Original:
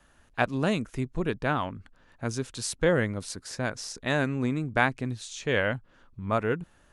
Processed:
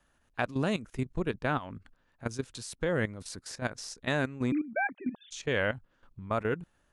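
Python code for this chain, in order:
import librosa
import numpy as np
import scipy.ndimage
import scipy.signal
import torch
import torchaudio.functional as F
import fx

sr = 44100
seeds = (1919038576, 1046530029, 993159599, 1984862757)

y = fx.sine_speech(x, sr, at=(4.52, 5.31))
y = fx.level_steps(y, sr, step_db=14)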